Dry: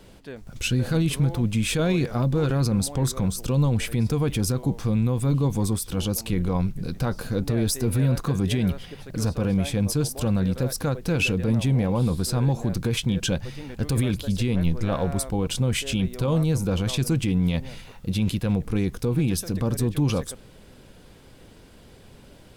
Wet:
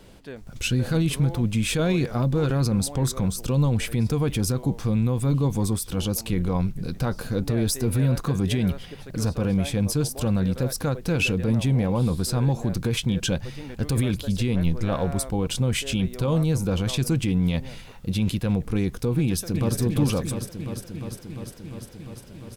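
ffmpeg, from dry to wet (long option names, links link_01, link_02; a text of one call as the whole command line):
ffmpeg -i in.wav -filter_complex "[0:a]asplit=2[link_01][link_02];[link_02]afade=type=in:start_time=19.19:duration=0.01,afade=type=out:start_time=19.78:duration=0.01,aecho=0:1:350|700|1050|1400|1750|2100|2450|2800|3150|3500|3850|4200:0.530884|0.424708|0.339766|0.271813|0.21745|0.17396|0.139168|0.111335|0.0890676|0.0712541|0.0570033|0.0456026[link_03];[link_01][link_03]amix=inputs=2:normalize=0" out.wav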